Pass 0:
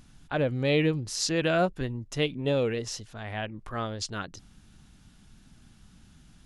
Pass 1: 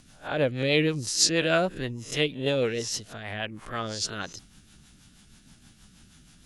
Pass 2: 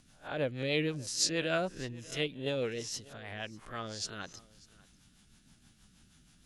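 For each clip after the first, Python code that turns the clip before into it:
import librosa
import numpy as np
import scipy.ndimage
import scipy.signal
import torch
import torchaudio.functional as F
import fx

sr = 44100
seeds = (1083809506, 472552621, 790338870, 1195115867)

y1 = fx.spec_swells(x, sr, rise_s=0.31)
y1 = fx.tilt_eq(y1, sr, slope=1.5)
y1 = fx.rotary(y1, sr, hz=6.3)
y1 = y1 * librosa.db_to_amplitude(4.0)
y2 = y1 + 10.0 ** (-22.5 / 20.0) * np.pad(y1, (int(594 * sr / 1000.0), 0))[:len(y1)]
y2 = y2 * librosa.db_to_amplitude(-8.0)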